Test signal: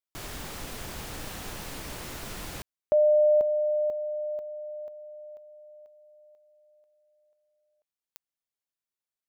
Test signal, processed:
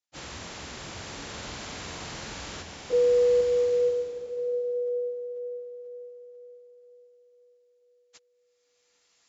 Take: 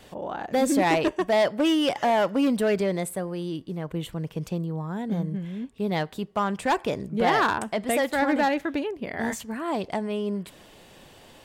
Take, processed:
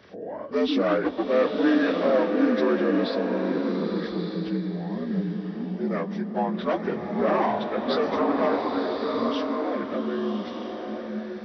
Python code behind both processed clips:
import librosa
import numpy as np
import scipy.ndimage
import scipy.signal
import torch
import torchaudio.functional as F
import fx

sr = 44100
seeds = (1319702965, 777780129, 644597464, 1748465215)

y = fx.partial_stretch(x, sr, pct=76)
y = scipy.signal.sosfilt(scipy.signal.butter(2, 45.0, 'highpass', fs=sr, output='sos'), y)
y = fx.rev_bloom(y, sr, seeds[0], attack_ms=1200, drr_db=2.5)